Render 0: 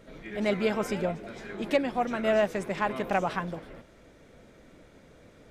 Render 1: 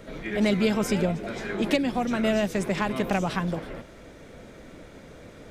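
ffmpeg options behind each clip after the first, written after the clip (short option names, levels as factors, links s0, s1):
-filter_complex "[0:a]acrossover=split=290|3000[s0][s1][s2];[s1]acompressor=threshold=0.0178:ratio=6[s3];[s0][s3][s2]amix=inputs=3:normalize=0,volume=2.66"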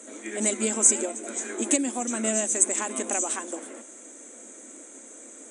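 -af "aexciter=amount=12.8:drive=6.9:freq=7100,superequalizer=6b=1.58:15b=3.16,afftfilt=real='re*between(b*sr/4096,210,10000)':imag='im*between(b*sr/4096,210,10000)':win_size=4096:overlap=0.75,volume=0.596"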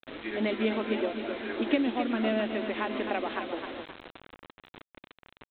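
-af "aecho=1:1:262|524|786|1048|1310:0.398|0.167|0.0702|0.0295|0.0124,aresample=8000,acrusher=bits=6:mix=0:aa=0.000001,aresample=44100"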